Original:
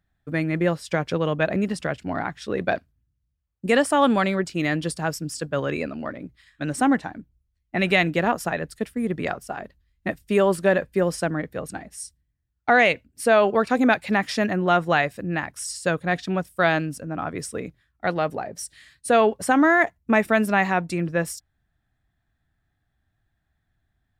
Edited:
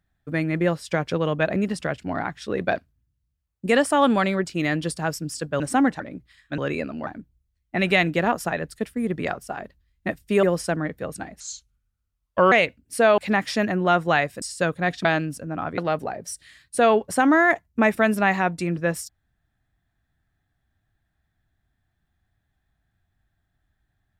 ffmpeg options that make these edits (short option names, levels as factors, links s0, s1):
-filter_complex "[0:a]asplit=12[s0][s1][s2][s3][s4][s5][s6][s7][s8][s9][s10][s11];[s0]atrim=end=5.602[s12];[s1]atrim=start=6.668:end=7.072[s13];[s2]atrim=start=6.088:end=6.672[s14];[s3]atrim=start=5.598:end=6.092[s15];[s4]atrim=start=7.068:end=10.432[s16];[s5]atrim=start=10.968:end=11.944[s17];[s6]atrim=start=11.94:end=12.79,asetpts=PTS-STARTPTS,asetrate=33516,aresample=44100,atrim=end_sample=49322,asetpts=PTS-STARTPTS[s18];[s7]atrim=start=12.786:end=13.452[s19];[s8]atrim=start=13.988:end=15.232[s20];[s9]atrim=start=15.668:end=16.302[s21];[s10]atrim=start=16.648:end=17.382[s22];[s11]atrim=start=18.088[s23];[s12][s13]acrossfade=d=0.004:c1=hsin:c2=hsin[s24];[s24][s14]acrossfade=d=0.004:c1=hsin:c2=hsin[s25];[s25][s15]acrossfade=d=0.004:c1=hsin:c2=hsin[s26];[s26][s16]acrossfade=d=0.004:c1=hsin:c2=hsin[s27];[s27][s17]acrossfade=d=0.004:c1=hsin:c2=hsin[s28];[s28][s18]acrossfade=d=0.004:c1=hsin:c2=hsin[s29];[s29][s19]acrossfade=d=0.004:c1=hsin:c2=hsin[s30];[s30][s20]acrossfade=d=0.004:c1=hsin:c2=hsin[s31];[s31][s21]acrossfade=d=0.004:c1=hsin:c2=hsin[s32];[s32][s22]acrossfade=d=0.004:c1=hsin:c2=hsin[s33];[s33][s23]acrossfade=d=0.004:c1=hsin:c2=hsin"